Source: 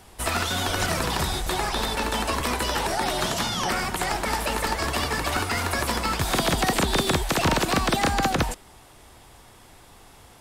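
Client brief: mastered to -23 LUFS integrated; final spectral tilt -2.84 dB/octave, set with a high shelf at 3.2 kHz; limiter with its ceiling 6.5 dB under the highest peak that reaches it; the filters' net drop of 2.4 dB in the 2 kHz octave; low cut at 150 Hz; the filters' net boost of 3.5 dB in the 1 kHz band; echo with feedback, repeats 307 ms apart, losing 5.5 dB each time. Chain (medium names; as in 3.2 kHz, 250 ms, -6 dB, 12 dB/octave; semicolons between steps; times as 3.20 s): high-pass 150 Hz; peaking EQ 1 kHz +5.5 dB; peaking EQ 2 kHz -7 dB; treble shelf 3.2 kHz +5.5 dB; peak limiter -13.5 dBFS; feedback delay 307 ms, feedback 53%, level -5.5 dB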